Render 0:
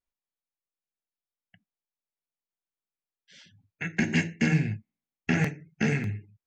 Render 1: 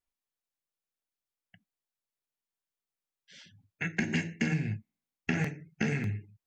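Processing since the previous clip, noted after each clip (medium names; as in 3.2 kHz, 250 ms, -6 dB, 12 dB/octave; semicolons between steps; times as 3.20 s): compression, threshold -26 dBFS, peak gain reduction 7.5 dB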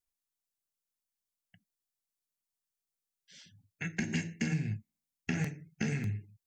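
tone controls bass +5 dB, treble +9 dB; trim -6 dB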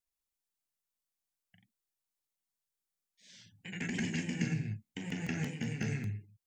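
ever faster or slower copies 127 ms, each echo +1 st, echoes 2; trim -3 dB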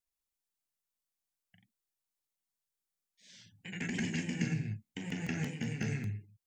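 no audible change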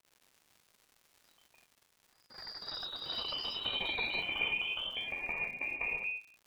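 frequency inversion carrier 2.6 kHz; crackle 130 per s -48 dBFS; ever faster or slower copies 159 ms, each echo +4 st, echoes 3; trim -1.5 dB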